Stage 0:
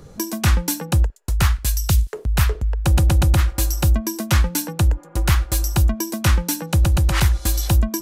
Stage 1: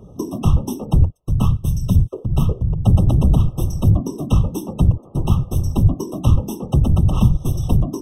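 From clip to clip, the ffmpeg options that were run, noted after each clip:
-af "afftfilt=real='hypot(re,im)*cos(2*PI*random(0))':imag='hypot(re,im)*sin(2*PI*random(1))':win_size=512:overlap=0.75,tiltshelf=f=1.1k:g=6.5,afftfilt=real='re*eq(mod(floor(b*sr/1024/1300),2),0)':imag='im*eq(mod(floor(b*sr/1024/1300),2),0)':win_size=1024:overlap=0.75,volume=2dB"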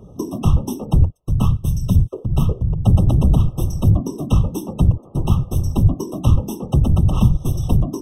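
-af anull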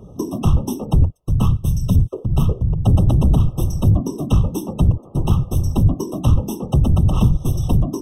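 -af "asoftclip=type=tanh:threshold=-6.5dB,volume=1.5dB"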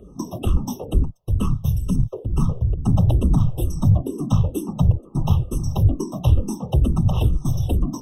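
-filter_complex "[0:a]asplit=2[a][b];[b]afreqshift=-2.2[c];[a][c]amix=inputs=2:normalize=1"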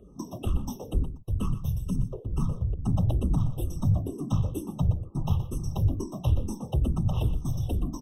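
-af "aecho=1:1:122:0.237,volume=-8dB"

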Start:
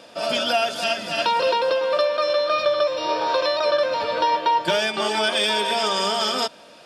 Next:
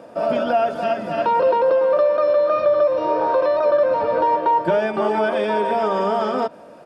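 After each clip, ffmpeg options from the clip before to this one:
-filter_complex "[0:a]acrossover=split=4700[a][b];[b]acompressor=threshold=-48dB:ratio=4:attack=1:release=60[c];[a][c]amix=inputs=2:normalize=0,firequalizer=gain_entry='entry(520,0);entry(3400,-22);entry(9900,-12)':delay=0.05:min_phase=1,asplit=2[d][e];[e]alimiter=limit=-19dB:level=0:latency=1,volume=1.5dB[f];[d][f]amix=inputs=2:normalize=0"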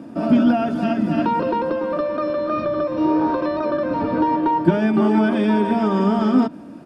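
-af "lowshelf=f=380:t=q:w=3:g=9.5,volume=-1dB"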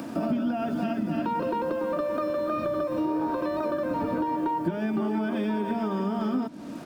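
-filter_complex "[0:a]acrossover=split=690[a][b];[b]acompressor=mode=upward:threshold=-39dB:ratio=2.5[c];[a][c]amix=inputs=2:normalize=0,acrusher=bits=7:mix=0:aa=0.5,acompressor=threshold=-25dB:ratio=6"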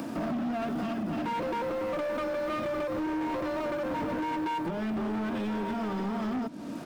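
-af "asoftclip=type=hard:threshold=-29dB"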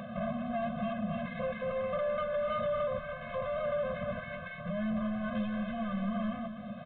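-af "aecho=1:1:244:0.316,aresample=8000,aresample=44100,afftfilt=real='re*eq(mod(floor(b*sr/1024/250),2),0)':imag='im*eq(mod(floor(b*sr/1024/250),2),0)':win_size=1024:overlap=0.75"

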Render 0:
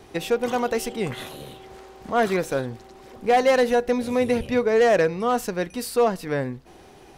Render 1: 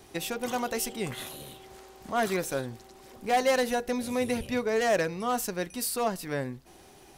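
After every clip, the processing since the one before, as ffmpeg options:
-af "highshelf=f=5.3k:g=11.5,bandreject=f=470:w=12,volume=-6dB"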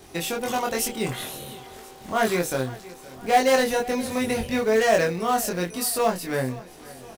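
-filter_complex "[0:a]asplit=2[a][b];[b]adelay=23,volume=-2dB[c];[a][c]amix=inputs=2:normalize=0,asplit=2[d][e];[e]acrusher=bits=3:mode=log:mix=0:aa=0.000001,volume=-6.5dB[f];[d][f]amix=inputs=2:normalize=0,aecho=1:1:518|1036|1554|2072|2590:0.106|0.0604|0.0344|0.0196|0.0112"

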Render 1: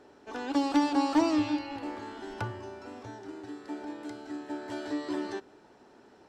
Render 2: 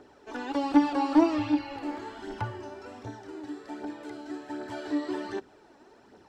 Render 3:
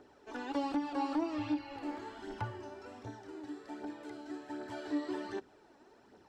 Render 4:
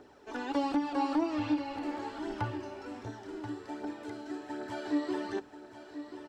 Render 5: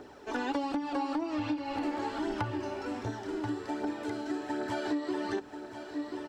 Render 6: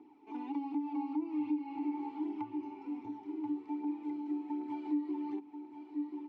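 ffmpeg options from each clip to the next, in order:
-filter_complex "[0:a]aphaser=in_gain=1:out_gain=1:delay=3.7:decay=0.48:speed=1.3:type=triangular,acrossover=split=3300[a][b];[b]acompressor=threshold=-51dB:ratio=4:attack=1:release=60[c];[a][c]amix=inputs=2:normalize=0"
-af "alimiter=limit=-19dB:level=0:latency=1:release=295,volume=-5.5dB"
-af "aecho=1:1:1033:0.266,volume=4dB"
-af "acompressor=threshold=-35dB:ratio=12,volume=6.5dB"
-filter_complex "[0:a]asplit=3[a][b][c];[a]bandpass=f=300:t=q:w=8,volume=0dB[d];[b]bandpass=f=870:t=q:w=8,volume=-6dB[e];[c]bandpass=f=2.24k:t=q:w=8,volume=-9dB[f];[d][e][f]amix=inputs=3:normalize=0"

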